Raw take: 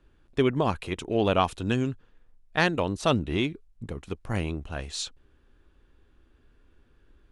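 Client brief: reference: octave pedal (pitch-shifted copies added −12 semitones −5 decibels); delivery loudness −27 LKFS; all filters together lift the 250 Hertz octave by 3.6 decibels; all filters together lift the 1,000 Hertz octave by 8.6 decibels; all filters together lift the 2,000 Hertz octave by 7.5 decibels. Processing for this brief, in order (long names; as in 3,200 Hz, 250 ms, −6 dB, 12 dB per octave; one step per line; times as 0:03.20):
parametric band 250 Hz +4 dB
parametric band 1,000 Hz +9 dB
parametric band 2,000 Hz +6.5 dB
pitch-shifted copies added −12 semitones −5 dB
level −5.5 dB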